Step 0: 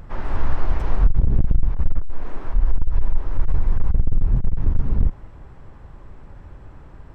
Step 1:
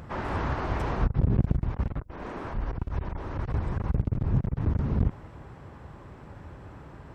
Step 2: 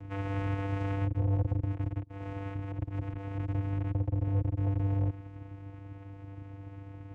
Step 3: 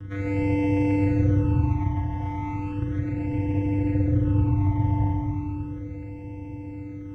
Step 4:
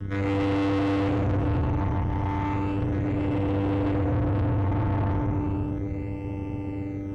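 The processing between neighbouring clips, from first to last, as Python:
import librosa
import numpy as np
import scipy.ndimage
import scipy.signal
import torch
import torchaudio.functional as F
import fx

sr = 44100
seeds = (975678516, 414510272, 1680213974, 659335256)

y1 = scipy.signal.sosfilt(scipy.signal.butter(2, 87.0, 'highpass', fs=sr, output='sos'), x)
y1 = y1 * librosa.db_to_amplitude(2.0)
y2 = fx.vocoder(y1, sr, bands=4, carrier='square', carrier_hz=98.5)
y2 = 10.0 ** (-25.5 / 20.0) * np.tanh(y2 / 10.0 ** (-25.5 / 20.0))
y2 = y2 * librosa.db_to_amplitude(3.5)
y3 = fx.rev_schroeder(y2, sr, rt60_s=3.1, comb_ms=33, drr_db=-4.0)
y3 = fx.phaser_stages(y3, sr, stages=12, low_hz=430.0, high_hz=1300.0, hz=0.35, feedback_pct=10)
y3 = y3 * librosa.db_to_amplitude(7.0)
y4 = fx.tube_stage(y3, sr, drive_db=31.0, bias=0.75)
y4 = y4 * librosa.db_to_amplitude(8.5)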